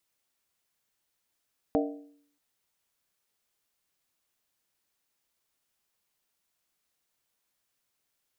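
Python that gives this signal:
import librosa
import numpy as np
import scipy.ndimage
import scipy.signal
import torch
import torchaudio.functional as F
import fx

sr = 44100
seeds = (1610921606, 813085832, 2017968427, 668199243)

y = fx.strike_skin(sr, length_s=0.63, level_db=-23, hz=289.0, decay_s=0.65, tilt_db=2, modes=5)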